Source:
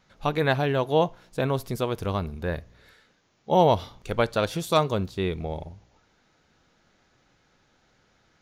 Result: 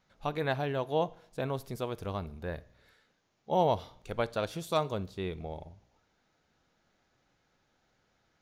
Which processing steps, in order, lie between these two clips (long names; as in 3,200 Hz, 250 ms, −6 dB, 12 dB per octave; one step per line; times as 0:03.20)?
parametric band 700 Hz +2.5 dB 0.73 octaves
on a send: convolution reverb RT60 0.65 s, pre-delay 37 ms, DRR 22 dB
on the sum: level −9 dB